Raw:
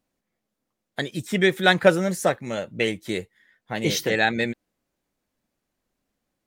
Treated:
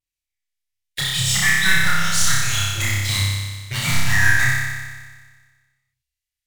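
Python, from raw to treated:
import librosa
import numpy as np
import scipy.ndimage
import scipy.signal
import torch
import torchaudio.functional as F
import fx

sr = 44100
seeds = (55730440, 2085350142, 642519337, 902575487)

p1 = fx.tracing_dist(x, sr, depth_ms=0.056)
p2 = scipy.signal.sosfilt(scipy.signal.cheby2(4, 60, [260.0, 780.0], 'bandstop', fs=sr, output='sos'), p1)
p3 = fx.env_lowpass_down(p2, sr, base_hz=1700.0, full_db=-25.0)
p4 = fx.leveller(p3, sr, passes=5)
p5 = fx.env_phaser(p4, sr, low_hz=160.0, high_hz=2800.0, full_db=-9.0)
p6 = 10.0 ** (-22.0 / 20.0) * (np.abs((p5 / 10.0 ** (-22.0 / 20.0) + 3.0) % 4.0 - 2.0) - 1.0)
p7 = p5 + (p6 * librosa.db_to_amplitude(-10.5))
p8 = fx.vibrato(p7, sr, rate_hz=1.4, depth_cents=72.0)
y = p8 + fx.room_flutter(p8, sr, wall_m=5.2, rt60_s=1.5, dry=0)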